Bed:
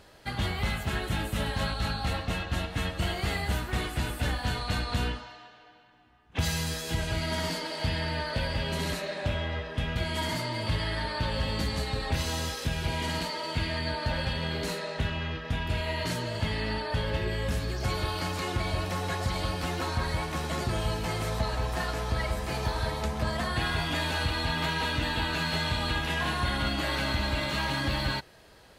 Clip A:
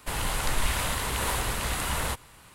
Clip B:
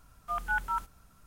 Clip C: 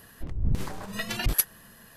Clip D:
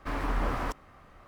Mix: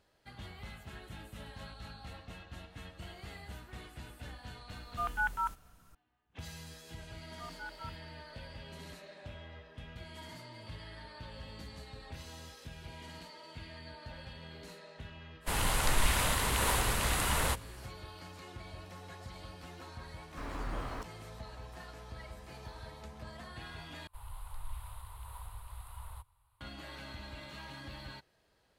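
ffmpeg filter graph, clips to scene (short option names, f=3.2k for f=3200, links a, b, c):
-filter_complex "[2:a]asplit=2[a][b];[1:a]asplit=2[c][d];[0:a]volume=-17.5dB[e];[d]firequalizer=gain_entry='entry(100,0);entry(170,-30);entry(960,-4);entry(1700,-19);entry(3900,-14);entry(5900,-27);entry(9700,-9)':delay=0.05:min_phase=1[f];[e]asplit=2[g][h];[g]atrim=end=24.074[i];[f]atrim=end=2.54,asetpts=PTS-STARTPTS,volume=-13dB[j];[h]atrim=start=26.606[k];[a]atrim=end=1.26,asetpts=PTS-STARTPTS,volume=-2dB,afade=t=in:d=0.004:c=hsin,afade=t=out:st=1.256:d=0.004:c=hsin,adelay=206829S[l];[b]atrim=end=1.26,asetpts=PTS-STARTPTS,volume=-15.5dB,afade=t=in:d=0.004:c=hsin,afade=t=out:st=1.256:d=0.004:c=hsin,adelay=7110[m];[c]atrim=end=2.54,asetpts=PTS-STARTPTS,volume=-1.5dB,afade=t=in:d=0.1,afade=t=out:st=2.44:d=0.1,adelay=679140S[n];[4:a]atrim=end=1.27,asetpts=PTS-STARTPTS,volume=-9.5dB,afade=t=in:d=0.004:c=hsin,afade=t=out:st=1.266:d=0.004:c=hsin,adelay=20310[o];[i][j]acrossfade=d=0.004:c1=hsin:c2=hsin[p];[p][k]acrossfade=d=0.004:c1=hsin:c2=hsin[q];[q][l][m][n][o]amix=inputs=5:normalize=0"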